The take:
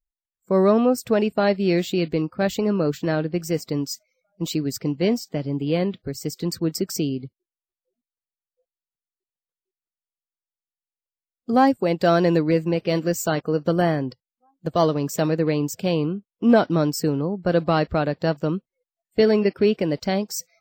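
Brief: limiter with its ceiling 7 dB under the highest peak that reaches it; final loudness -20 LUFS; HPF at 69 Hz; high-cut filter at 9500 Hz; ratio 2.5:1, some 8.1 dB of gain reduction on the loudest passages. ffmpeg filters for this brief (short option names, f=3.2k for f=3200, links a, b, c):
-af "highpass=69,lowpass=9.5k,acompressor=threshold=-24dB:ratio=2.5,volume=10dB,alimiter=limit=-9dB:level=0:latency=1"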